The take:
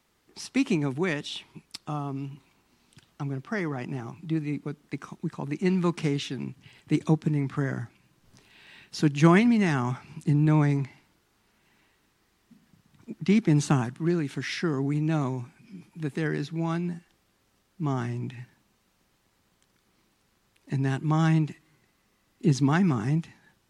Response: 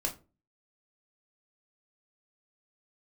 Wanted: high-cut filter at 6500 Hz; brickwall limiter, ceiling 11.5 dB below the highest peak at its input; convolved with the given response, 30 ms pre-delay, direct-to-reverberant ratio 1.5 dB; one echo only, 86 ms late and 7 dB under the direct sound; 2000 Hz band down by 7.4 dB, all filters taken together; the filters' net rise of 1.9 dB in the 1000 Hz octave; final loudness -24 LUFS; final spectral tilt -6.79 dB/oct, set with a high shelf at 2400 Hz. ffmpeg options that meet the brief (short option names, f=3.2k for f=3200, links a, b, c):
-filter_complex "[0:a]lowpass=6.5k,equalizer=f=1k:t=o:g=5.5,equalizer=f=2k:t=o:g=-8.5,highshelf=f=2.4k:g=-6.5,alimiter=limit=-17dB:level=0:latency=1,aecho=1:1:86:0.447,asplit=2[a][b];[1:a]atrim=start_sample=2205,adelay=30[c];[b][c]afir=irnorm=-1:irlink=0,volume=-5dB[d];[a][d]amix=inputs=2:normalize=0,volume=1.5dB"